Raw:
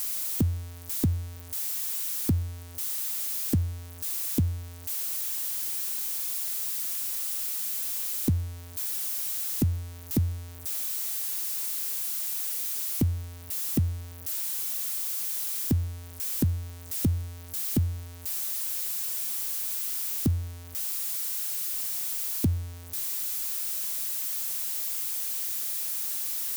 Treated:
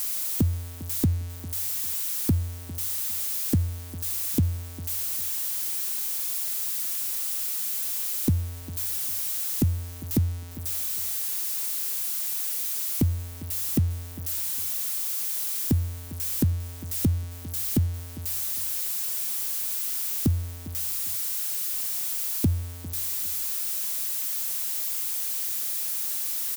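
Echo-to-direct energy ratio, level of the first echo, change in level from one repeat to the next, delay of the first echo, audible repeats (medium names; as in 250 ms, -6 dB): -17.5 dB, -17.5 dB, -13.0 dB, 402 ms, 2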